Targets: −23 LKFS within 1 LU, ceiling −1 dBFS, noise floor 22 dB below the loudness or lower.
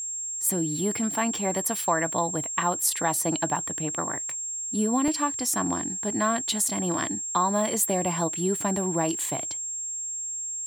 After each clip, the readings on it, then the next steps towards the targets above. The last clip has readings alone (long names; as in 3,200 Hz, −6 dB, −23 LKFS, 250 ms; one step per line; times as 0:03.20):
number of dropouts 4; longest dropout 1.4 ms; interfering tone 7,500 Hz; level of the tone −30 dBFS; integrated loudness −26.0 LKFS; sample peak −9.0 dBFS; target loudness −23.0 LKFS
→ repair the gap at 0:01.38/0:03.56/0:04.30/0:05.08, 1.4 ms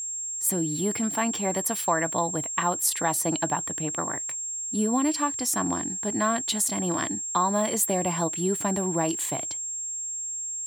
number of dropouts 0; interfering tone 7,500 Hz; level of the tone −30 dBFS
→ notch filter 7,500 Hz, Q 30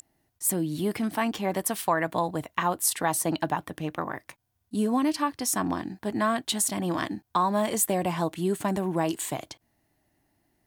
interfering tone none found; integrated loudness −27.5 LKFS; sample peak −8.5 dBFS; target loudness −23.0 LKFS
→ level +4.5 dB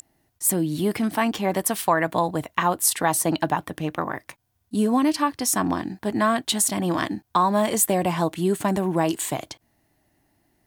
integrated loudness −23.0 LKFS; sample peak −4.0 dBFS; background noise floor −70 dBFS